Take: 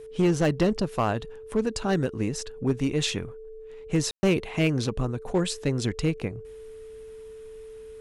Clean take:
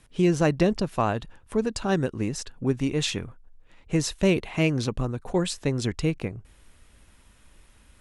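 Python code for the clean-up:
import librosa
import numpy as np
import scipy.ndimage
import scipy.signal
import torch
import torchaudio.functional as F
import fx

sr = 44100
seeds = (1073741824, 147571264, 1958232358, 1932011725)

y = fx.fix_declip(x, sr, threshold_db=-16.0)
y = fx.notch(y, sr, hz=440.0, q=30.0)
y = fx.fix_ambience(y, sr, seeds[0], print_start_s=6.94, print_end_s=7.44, start_s=4.11, end_s=4.23)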